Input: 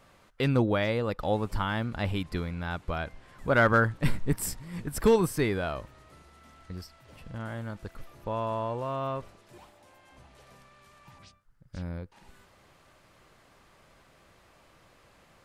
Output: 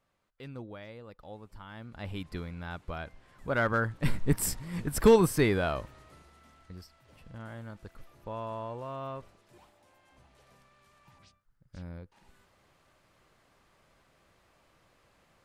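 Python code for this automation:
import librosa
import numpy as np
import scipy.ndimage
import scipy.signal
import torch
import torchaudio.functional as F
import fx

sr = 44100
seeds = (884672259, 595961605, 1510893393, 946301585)

y = fx.gain(x, sr, db=fx.line((1.61, -18.5), (2.22, -6.0), (3.79, -6.0), (4.36, 2.0), (5.75, 2.0), (6.74, -6.5)))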